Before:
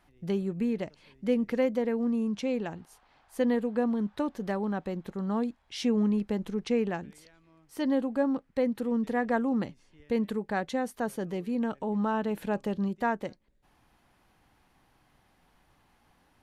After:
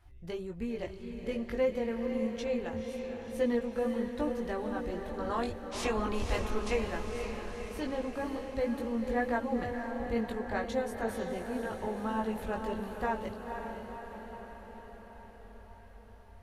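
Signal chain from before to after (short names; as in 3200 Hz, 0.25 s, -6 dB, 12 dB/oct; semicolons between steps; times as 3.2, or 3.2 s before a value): 5.18–6.73 spectral limiter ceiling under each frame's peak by 19 dB; resonant low shelf 120 Hz +13 dB, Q 3; chorus voices 6, 0.21 Hz, delay 20 ms, depth 3.2 ms; on a send: diffused feedback echo 0.511 s, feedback 64%, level -6 dB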